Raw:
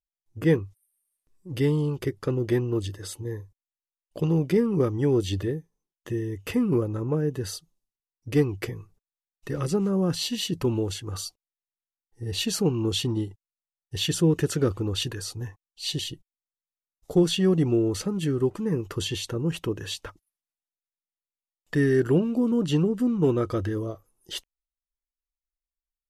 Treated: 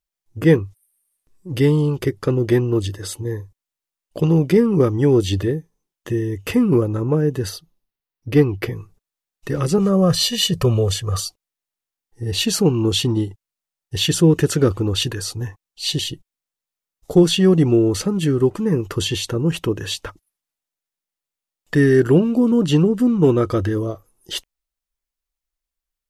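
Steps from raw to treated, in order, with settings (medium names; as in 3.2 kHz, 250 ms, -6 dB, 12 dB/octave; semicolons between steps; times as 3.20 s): 7.49–8.71 s: peaking EQ 7.7 kHz -11.5 dB 0.86 oct; 9.78–11.20 s: comb 1.7 ms, depth 100%; trim +7.5 dB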